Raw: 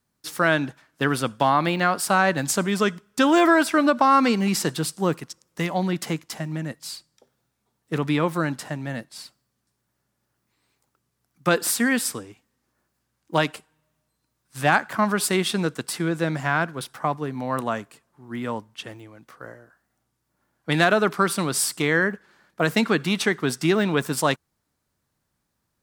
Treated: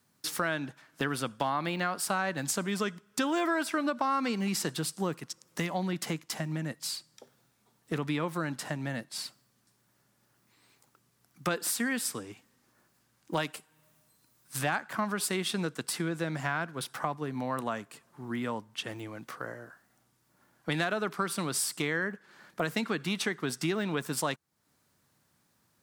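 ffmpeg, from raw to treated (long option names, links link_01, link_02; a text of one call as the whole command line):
ffmpeg -i in.wav -filter_complex "[0:a]asettb=1/sr,asplit=3[link_01][link_02][link_03];[link_01]atrim=end=13.374[link_04];[link_02]atrim=start=13.37:end=14.59,asetpts=PTS-STARTPTS,afade=type=in:duration=0.004:curve=qsin,afade=type=out:start_time=1.216:duration=0.004:curve=qsin,highshelf=frequency=8900:gain=8.5[link_05];[link_03]atrim=start=14.586[link_06];[link_04][link_05]acrossfade=duration=0.004:curve1=hsin:curve2=qsin[link_07];[link_07][link_06]acrossfade=duration=0.004:curve1=qsin:curve2=hsin,highpass=110,equalizer=frequency=450:width=0.51:gain=-2,acompressor=threshold=-42dB:ratio=2.5,volume=6.5dB" out.wav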